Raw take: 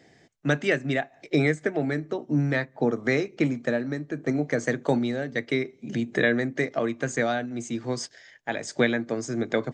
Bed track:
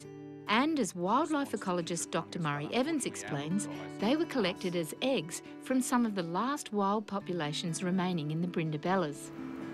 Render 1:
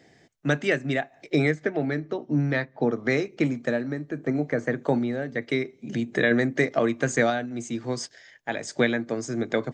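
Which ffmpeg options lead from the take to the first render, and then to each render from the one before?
ffmpeg -i in.wav -filter_complex "[0:a]asettb=1/sr,asplit=3[link_01][link_02][link_03];[link_01]atrim=end=1.514[link_04];[link_02]atrim=start=1.51:end=3.1,asetpts=PTS-STARTPTS,afade=type=in:duration=0.004:curve=qsin,afade=type=out:start_time=1.586:duration=0.004:curve=qsin,lowpass=frequency=5800:width=0.5412,lowpass=frequency=5800:width=1.3066[link_05];[link_03]atrim=start=3.096[link_06];[link_04][link_05]acrossfade=duration=0.004:curve1=hsin:curve2=qsin[link_07];[link_07][link_06]acrossfade=duration=0.004:curve1=qsin:curve2=hsin,asettb=1/sr,asplit=3[link_08][link_09][link_10];[link_08]atrim=end=3.834[link_11];[link_09]atrim=start=3.83:end=5.42,asetpts=PTS-STARTPTS,afade=type=in:duration=0.004:curve=qsin,afade=type=out:start_time=1.586:duration=0.004:curve=qsin,acrossover=split=2500[link_12][link_13];[link_13]acompressor=threshold=-53dB:ratio=4:attack=1:release=60[link_14];[link_12][link_14]amix=inputs=2:normalize=0[link_15];[link_10]atrim=start=5.416[link_16];[link_11][link_15]acrossfade=duration=0.004:curve1=hsin:curve2=qsin[link_17];[link_17][link_16]acrossfade=duration=0.004:curve1=qsin:curve2=hsin,asplit=3[link_18][link_19][link_20];[link_18]atrim=end=6.312[link_21];[link_19]atrim=start=6.308:end=7.302,asetpts=PTS-STARTPTS,volume=3.5dB[link_22];[link_20]atrim=start=7.298[link_23];[link_21][link_22]acrossfade=duration=0.004:curve1=hsin:curve2=hsin[link_24];[link_24][link_23]acrossfade=duration=0.004:curve1=hsin:curve2=hsin" out.wav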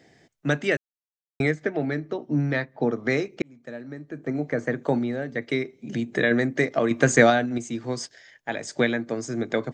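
ffmpeg -i in.wav -filter_complex "[0:a]asplit=6[link_01][link_02][link_03][link_04][link_05][link_06];[link_01]atrim=end=0.77,asetpts=PTS-STARTPTS,afade=type=out:start_time=0.766:duration=0.004:curve=hsin[link_07];[link_02]atrim=start=0.77:end=1.4,asetpts=PTS-STARTPTS,volume=0[link_08];[link_03]atrim=start=1.4:end=3.42,asetpts=PTS-STARTPTS,afade=type=in:duration=0.004:curve=hsin,afade=type=out:start_time=2.016:duration=0.004:curve=hsin[link_09];[link_04]atrim=start=3.42:end=6.912,asetpts=PTS-STARTPTS,afade=type=in:duration=1.17[link_10];[link_05]atrim=start=6.908:end=7.582,asetpts=PTS-STARTPTS,volume=6dB[link_11];[link_06]atrim=start=7.578[link_12];[link_07][link_08][link_09][link_10]concat=n=4:v=0:a=1[link_13];[link_13][link_11]acrossfade=duration=0.004:curve1=hsin:curve2=hsin[link_14];[link_14][link_12]acrossfade=duration=0.004:curve1=hsin:curve2=hsin" out.wav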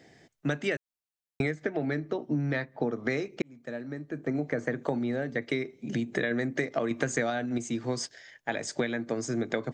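ffmpeg -i in.wav -af "acompressor=threshold=-25dB:ratio=8" out.wav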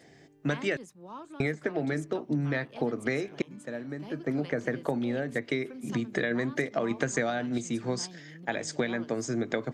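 ffmpeg -i in.wav -i bed.wav -filter_complex "[1:a]volume=-15dB[link_01];[0:a][link_01]amix=inputs=2:normalize=0" out.wav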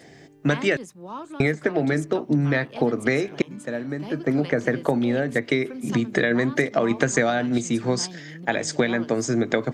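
ffmpeg -i in.wav -af "volume=8dB" out.wav

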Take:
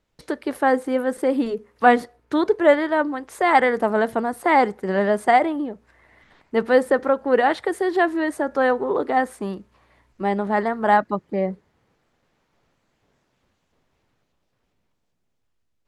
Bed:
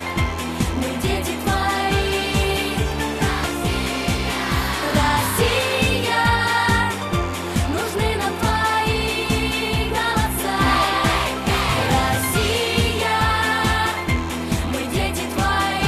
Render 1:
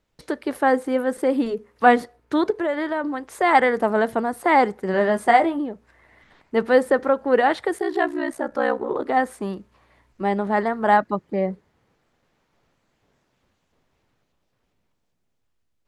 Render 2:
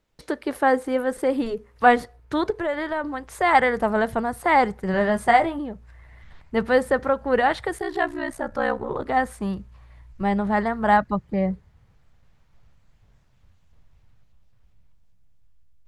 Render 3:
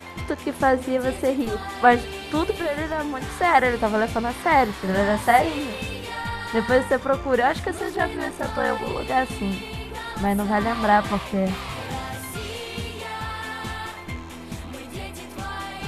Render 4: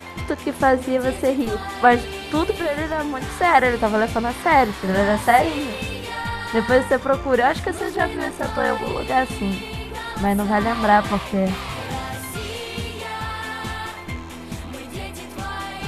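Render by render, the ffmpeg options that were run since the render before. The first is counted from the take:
ffmpeg -i in.wav -filter_complex "[0:a]asettb=1/sr,asplit=3[link_01][link_02][link_03];[link_01]atrim=end=2.504[link_04];[link_02]atrim=start=2.5:end=3.04,asetpts=PTS-STARTPTS,afade=type=in:duration=0.004:curve=qsin,afade=type=out:start_time=0.536:duration=0.004:curve=qsin,acompressor=threshold=-20dB:ratio=6:attack=3.2:release=140:knee=1:detection=peak[link_05];[link_03]atrim=start=3.036[link_06];[link_04][link_05]acrossfade=duration=0.004:curve1=hsin:curve2=qsin[link_07];[link_07][link_06]acrossfade=duration=0.004:curve1=qsin:curve2=hsin,asettb=1/sr,asplit=3[link_08][link_09][link_10];[link_08]atrim=end=4.924[link_11];[link_09]atrim=start=4.92:end=5.59,asetpts=PTS-STARTPTS,afade=type=in:duration=0.004:curve=qsin,afade=type=out:start_time=0.666:duration=0.004:curve=qsin,asplit=2[link_12][link_13];[link_13]adelay=18,volume=-7dB[link_14];[link_12][link_14]amix=inputs=2:normalize=0,atrim=end_sample=29547[link_15];[link_10]atrim=start=5.586[link_16];[link_11][link_15]acrossfade=duration=0.004:curve1=hsin:curve2=qsin[link_17];[link_17][link_16]acrossfade=duration=0.004:curve1=qsin:curve2=hsin,asplit=3[link_18][link_19][link_20];[link_18]afade=type=out:start_time=7.77:duration=0.02[link_21];[link_19]aeval=exprs='val(0)*sin(2*PI*31*n/s)':channel_layout=same,afade=type=in:start_time=7.77:duration=0.02,afade=type=out:start_time=9.04:duration=0.02[link_22];[link_20]afade=type=in:start_time=9.04:duration=0.02[link_23];[link_21][link_22][link_23]amix=inputs=3:normalize=0" out.wav
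ffmpeg -i in.wav -af "asubboost=boost=11:cutoff=95" out.wav
ffmpeg -i in.wav -i bed.wav -filter_complex "[1:a]volume=-12.5dB[link_01];[0:a][link_01]amix=inputs=2:normalize=0" out.wav
ffmpeg -i in.wav -af "volume=2.5dB,alimiter=limit=-3dB:level=0:latency=1" out.wav

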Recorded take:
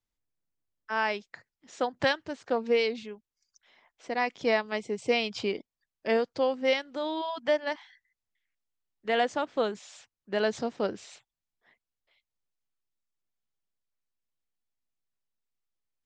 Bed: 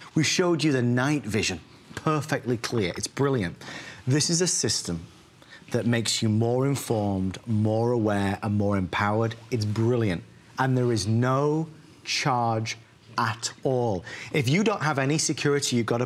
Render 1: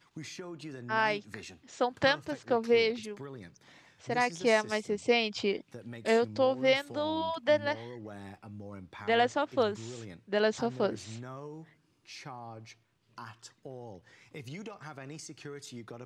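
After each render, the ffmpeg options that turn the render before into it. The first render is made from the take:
ffmpeg -i in.wav -i bed.wav -filter_complex "[1:a]volume=-20.5dB[link_01];[0:a][link_01]amix=inputs=2:normalize=0" out.wav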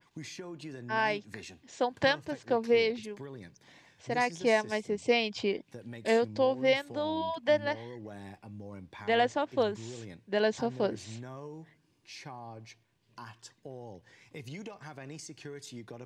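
ffmpeg -i in.wav -af "bandreject=frequency=1300:width=5.4,adynamicequalizer=threshold=0.00708:dfrequency=2700:dqfactor=0.7:tfrequency=2700:tqfactor=0.7:attack=5:release=100:ratio=0.375:range=2.5:mode=cutabove:tftype=highshelf" out.wav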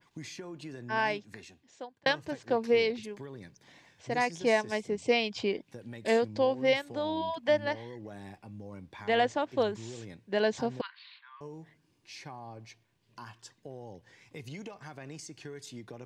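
ffmpeg -i in.wav -filter_complex "[0:a]asettb=1/sr,asplit=3[link_01][link_02][link_03];[link_01]atrim=end=10.814[link_04];[link_02]atrim=start=10.81:end=11.41,asetpts=PTS-STARTPTS,afade=type=in:duration=0.004:curve=qsin,afade=type=out:start_time=0.596:duration=0.004:curve=qsin,asuperpass=centerf=2100:order=20:qfactor=0.6[link_05];[link_03]atrim=start=11.406[link_06];[link_04][link_05]acrossfade=duration=0.004:curve1=hsin:curve2=qsin[link_07];[link_07][link_06]acrossfade=duration=0.004:curve1=qsin:curve2=hsin,asplit=2[link_08][link_09];[link_08]atrim=end=2.06,asetpts=PTS-STARTPTS,afade=type=out:start_time=1:duration=1.06[link_10];[link_09]atrim=start=2.06,asetpts=PTS-STARTPTS,afade=type=in:duration=0.004:curve=hsin[link_11];[link_10][link_11]concat=n=2:v=0:a=1" out.wav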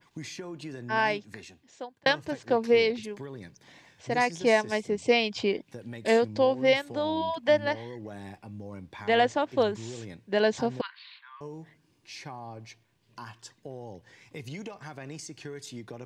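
ffmpeg -i in.wav -af "volume=3.5dB" out.wav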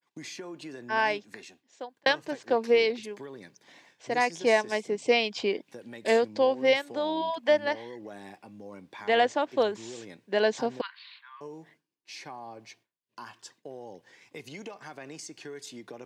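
ffmpeg -i in.wav -af "agate=range=-33dB:threshold=-53dB:ratio=3:detection=peak,highpass=250" out.wav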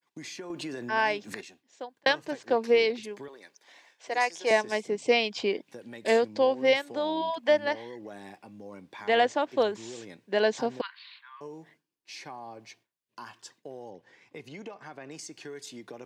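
ffmpeg -i in.wav -filter_complex "[0:a]asettb=1/sr,asplit=3[link_01][link_02][link_03];[link_01]atrim=end=0.504[link_04];[link_02]atrim=start=0.5:end=1.41,asetpts=PTS-STARTPTS,afade=type=in:duration=0.004:curve=qsin,afade=type=out:start_time=0.906:duration=0.004:curve=qsin,acompressor=mode=upward:threshold=-28dB:ratio=2.5:attack=3.2:release=140:knee=2.83:detection=peak[link_05];[link_03]atrim=start=1.406[link_06];[link_04][link_05]acrossfade=duration=0.004:curve1=hsin:curve2=qsin[link_07];[link_07][link_06]acrossfade=duration=0.004:curve1=qsin:curve2=hsin,asettb=1/sr,asplit=3[link_08][link_09][link_10];[link_08]atrim=end=3.284[link_11];[link_09]atrim=start=3.28:end=4.51,asetpts=PTS-STARTPTS,afade=type=in:duration=0.004:curve=qsin,afade=type=out:start_time=1.226:duration=0.004:curve=qsin,highpass=500[link_12];[link_10]atrim=start=4.506[link_13];[link_11][link_12]acrossfade=duration=0.004:curve1=hsin:curve2=qsin[link_14];[link_14][link_13]acrossfade=duration=0.004:curve1=qsin:curve2=hsin,asettb=1/sr,asplit=3[link_15][link_16][link_17];[link_15]atrim=end=13.904[link_18];[link_16]atrim=start=13.9:end=15.11,asetpts=PTS-STARTPTS,afade=type=in:duration=0.004:curve=qsin,afade=type=out:start_time=1.206:duration=0.004:curve=qsin,highshelf=frequency=4300:gain=-11[link_19];[link_17]atrim=start=15.106[link_20];[link_18][link_19]acrossfade=duration=0.004:curve1=hsin:curve2=qsin[link_21];[link_21][link_20]acrossfade=duration=0.004:curve1=qsin:curve2=hsin" out.wav

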